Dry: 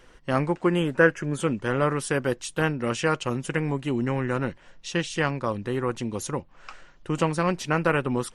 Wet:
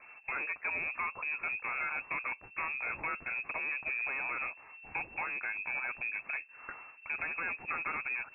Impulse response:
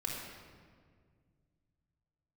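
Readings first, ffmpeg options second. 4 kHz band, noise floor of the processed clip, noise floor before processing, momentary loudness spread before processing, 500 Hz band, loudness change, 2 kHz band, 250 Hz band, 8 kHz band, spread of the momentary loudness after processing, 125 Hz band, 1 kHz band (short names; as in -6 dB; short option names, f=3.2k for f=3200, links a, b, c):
under -40 dB, -56 dBFS, -53 dBFS, 8 LU, -26.0 dB, -9.0 dB, -3.5 dB, -29.5 dB, under -40 dB, 6 LU, -32.5 dB, -10.0 dB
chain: -filter_complex "[0:a]acrossover=split=84|1400[a][b][c];[a]acompressor=threshold=-52dB:ratio=4[d];[b]acompressor=threshold=-33dB:ratio=4[e];[c]acompressor=threshold=-31dB:ratio=4[f];[d][e][f]amix=inputs=3:normalize=0,volume=30.5dB,asoftclip=hard,volume=-30.5dB,lowpass=f=2.3k:t=q:w=0.5098,lowpass=f=2.3k:t=q:w=0.6013,lowpass=f=2.3k:t=q:w=0.9,lowpass=f=2.3k:t=q:w=2.563,afreqshift=-2700"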